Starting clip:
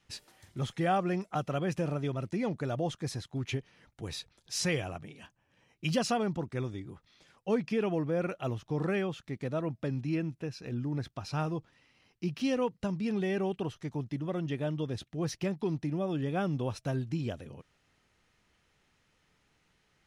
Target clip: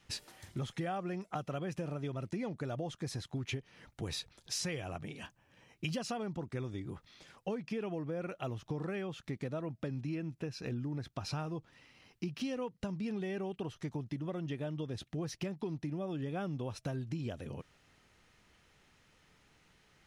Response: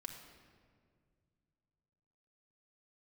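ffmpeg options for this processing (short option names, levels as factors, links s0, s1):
-af "acompressor=threshold=0.01:ratio=6,volume=1.68"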